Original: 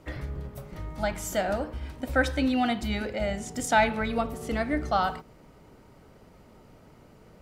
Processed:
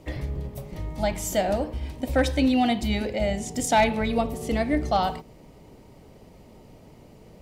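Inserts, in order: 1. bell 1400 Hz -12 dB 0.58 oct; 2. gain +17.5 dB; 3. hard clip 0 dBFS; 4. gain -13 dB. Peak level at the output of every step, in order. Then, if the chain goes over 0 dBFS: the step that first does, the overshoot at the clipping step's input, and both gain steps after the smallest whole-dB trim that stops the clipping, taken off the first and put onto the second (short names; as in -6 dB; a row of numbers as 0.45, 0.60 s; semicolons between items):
-12.0, +5.5, 0.0, -13.0 dBFS; step 2, 5.5 dB; step 2 +11.5 dB, step 4 -7 dB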